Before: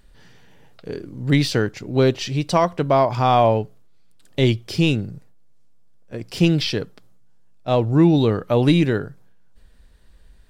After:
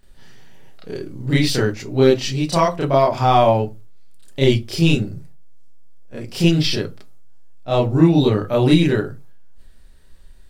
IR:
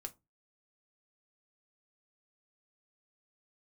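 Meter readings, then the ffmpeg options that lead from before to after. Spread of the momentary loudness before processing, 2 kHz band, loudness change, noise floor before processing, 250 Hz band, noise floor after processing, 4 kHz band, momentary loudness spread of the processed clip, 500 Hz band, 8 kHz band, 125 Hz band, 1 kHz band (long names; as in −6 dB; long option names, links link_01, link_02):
18 LU, +1.5 dB, +1.5 dB, −49 dBFS, +1.5 dB, −42 dBFS, +3.0 dB, 17 LU, +2.0 dB, +4.5 dB, +1.5 dB, +1.5 dB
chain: -filter_complex "[0:a]asplit=2[link_01][link_02];[1:a]atrim=start_sample=2205,highshelf=frequency=4400:gain=6.5,adelay=30[link_03];[link_02][link_03]afir=irnorm=-1:irlink=0,volume=8dB[link_04];[link_01][link_04]amix=inputs=2:normalize=0,volume=-4.5dB"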